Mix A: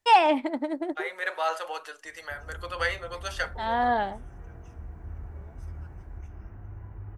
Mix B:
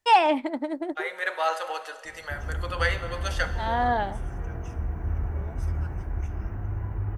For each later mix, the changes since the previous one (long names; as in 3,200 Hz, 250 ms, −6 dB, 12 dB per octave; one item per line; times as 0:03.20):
second voice: send on
background +11.0 dB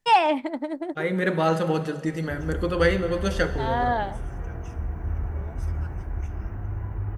second voice: remove high-pass filter 670 Hz 24 dB per octave